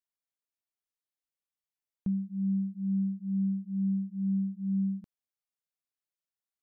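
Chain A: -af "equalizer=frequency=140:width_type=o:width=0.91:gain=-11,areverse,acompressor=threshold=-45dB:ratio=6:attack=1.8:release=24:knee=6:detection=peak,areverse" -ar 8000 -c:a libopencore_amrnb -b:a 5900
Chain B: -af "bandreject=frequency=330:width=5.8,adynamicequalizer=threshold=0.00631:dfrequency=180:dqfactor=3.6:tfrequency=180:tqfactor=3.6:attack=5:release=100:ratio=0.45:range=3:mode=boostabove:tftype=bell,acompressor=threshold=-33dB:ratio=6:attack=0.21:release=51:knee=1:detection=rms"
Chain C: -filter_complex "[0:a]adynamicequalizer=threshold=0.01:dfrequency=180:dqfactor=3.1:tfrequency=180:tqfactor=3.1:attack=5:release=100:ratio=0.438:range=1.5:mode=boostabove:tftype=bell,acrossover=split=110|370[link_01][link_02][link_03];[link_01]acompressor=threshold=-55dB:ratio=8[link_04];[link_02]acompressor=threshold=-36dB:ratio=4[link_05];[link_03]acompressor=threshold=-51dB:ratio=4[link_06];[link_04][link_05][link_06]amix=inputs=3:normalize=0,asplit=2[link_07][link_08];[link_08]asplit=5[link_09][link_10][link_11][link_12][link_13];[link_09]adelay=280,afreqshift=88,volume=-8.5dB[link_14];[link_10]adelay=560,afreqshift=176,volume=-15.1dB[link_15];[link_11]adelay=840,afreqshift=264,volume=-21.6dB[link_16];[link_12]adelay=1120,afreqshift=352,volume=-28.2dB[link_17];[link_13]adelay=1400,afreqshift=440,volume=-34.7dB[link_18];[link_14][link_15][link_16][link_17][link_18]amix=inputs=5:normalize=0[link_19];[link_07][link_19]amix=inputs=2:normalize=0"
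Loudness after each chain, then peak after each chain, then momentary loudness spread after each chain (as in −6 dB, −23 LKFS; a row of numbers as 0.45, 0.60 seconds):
−56.0, −36.0, −36.0 LKFS; −43.0, −31.0, −26.5 dBFS; 3, 4, 11 LU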